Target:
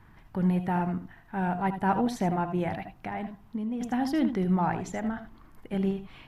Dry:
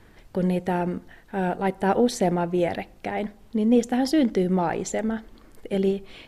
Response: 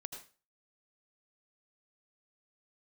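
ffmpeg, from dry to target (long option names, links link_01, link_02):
-filter_complex "[0:a]equalizer=frequency=125:width_type=o:width=1:gain=7,equalizer=frequency=500:width_type=o:width=1:gain=-10,equalizer=frequency=1000:width_type=o:width=1:gain=8,equalizer=frequency=4000:width_type=o:width=1:gain=-5,equalizer=frequency=8000:width_type=o:width=1:gain=-8[link_01];[1:a]atrim=start_sample=2205,afade=type=out:start_time=0.13:duration=0.01,atrim=end_sample=6174[link_02];[link_01][link_02]afir=irnorm=-1:irlink=0,asplit=3[link_03][link_04][link_05];[link_03]afade=type=out:start_time=2.74:duration=0.02[link_06];[link_04]acompressor=threshold=-30dB:ratio=6,afade=type=in:start_time=2.74:duration=0.02,afade=type=out:start_time=3.8:duration=0.02[link_07];[link_05]afade=type=in:start_time=3.8:duration=0.02[link_08];[link_06][link_07][link_08]amix=inputs=3:normalize=0"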